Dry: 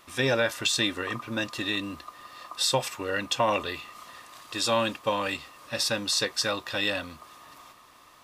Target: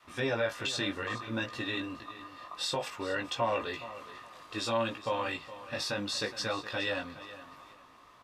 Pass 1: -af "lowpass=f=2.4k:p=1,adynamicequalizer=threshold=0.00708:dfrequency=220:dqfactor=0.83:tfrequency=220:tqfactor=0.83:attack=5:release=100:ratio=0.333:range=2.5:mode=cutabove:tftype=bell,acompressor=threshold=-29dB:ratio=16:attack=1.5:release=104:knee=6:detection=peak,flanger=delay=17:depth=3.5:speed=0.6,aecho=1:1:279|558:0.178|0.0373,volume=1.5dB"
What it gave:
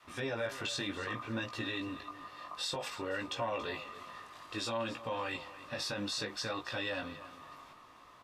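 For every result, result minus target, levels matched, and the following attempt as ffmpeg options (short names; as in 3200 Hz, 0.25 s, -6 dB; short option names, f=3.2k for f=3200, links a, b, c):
echo 0.138 s early; compressor: peak gain reduction +6.5 dB
-af "lowpass=f=2.4k:p=1,adynamicequalizer=threshold=0.00708:dfrequency=220:dqfactor=0.83:tfrequency=220:tqfactor=0.83:attack=5:release=100:ratio=0.333:range=2.5:mode=cutabove:tftype=bell,acompressor=threshold=-29dB:ratio=16:attack=1.5:release=104:knee=6:detection=peak,flanger=delay=17:depth=3.5:speed=0.6,aecho=1:1:417|834:0.178|0.0373,volume=1.5dB"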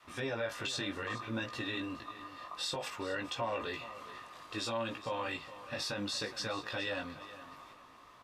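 compressor: peak gain reduction +6.5 dB
-af "lowpass=f=2.4k:p=1,adynamicequalizer=threshold=0.00708:dfrequency=220:dqfactor=0.83:tfrequency=220:tqfactor=0.83:attack=5:release=100:ratio=0.333:range=2.5:mode=cutabove:tftype=bell,acompressor=threshold=-22dB:ratio=16:attack=1.5:release=104:knee=6:detection=peak,flanger=delay=17:depth=3.5:speed=0.6,aecho=1:1:417|834:0.178|0.0373,volume=1.5dB"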